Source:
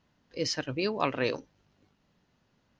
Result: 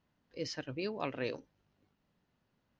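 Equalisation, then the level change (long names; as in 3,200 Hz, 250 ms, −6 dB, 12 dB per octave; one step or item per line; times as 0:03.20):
dynamic equaliser 1,100 Hz, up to −5 dB, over −42 dBFS, Q 1.9
high-shelf EQ 5,900 Hz −8.5 dB
−7.0 dB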